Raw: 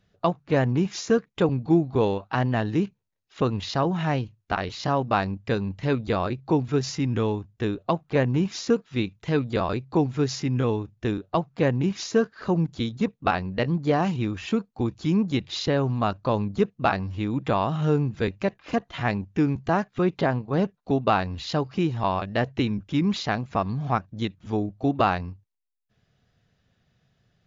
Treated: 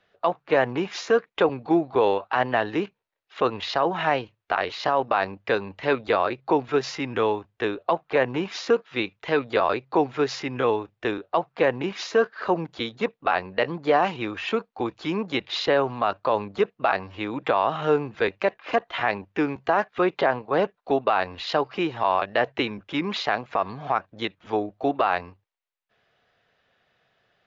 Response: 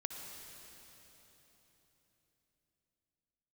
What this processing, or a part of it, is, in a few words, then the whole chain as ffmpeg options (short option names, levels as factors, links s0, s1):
DJ mixer with the lows and highs turned down: -filter_complex "[0:a]acrossover=split=400 3800:gain=0.0891 1 0.141[s0][s1][s2];[s0][s1][s2]amix=inputs=3:normalize=0,alimiter=limit=0.126:level=0:latency=1:release=34,volume=2.51"